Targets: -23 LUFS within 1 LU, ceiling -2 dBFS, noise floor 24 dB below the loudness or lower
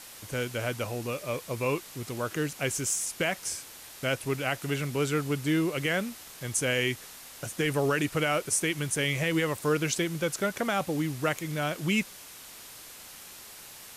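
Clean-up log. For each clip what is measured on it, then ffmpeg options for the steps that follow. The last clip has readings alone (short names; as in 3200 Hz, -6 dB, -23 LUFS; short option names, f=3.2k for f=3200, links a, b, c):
noise floor -47 dBFS; noise floor target -54 dBFS; loudness -29.5 LUFS; peak -15.0 dBFS; loudness target -23.0 LUFS
-> -af "afftdn=nr=7:nf=-47"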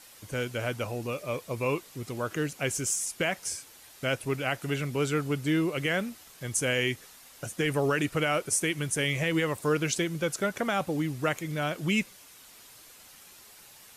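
noise floor -53 dBFS; noise floor target -54 dBFS
-> -af "afftdn=nr=6:nf=-53"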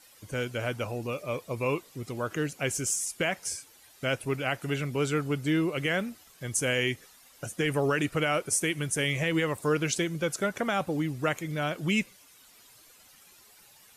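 noise floor -57 dBFS; loudness -29.5 LUFS; peak -15.0 dBFS; loudness target -23.0 LUFS
-> -af "volume=6.5dB"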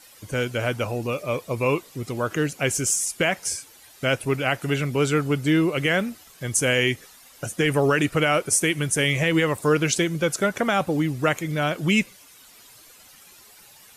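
loudness -23.0 LUFS; peak -8.5 dBFS; noise floor -50 dBFS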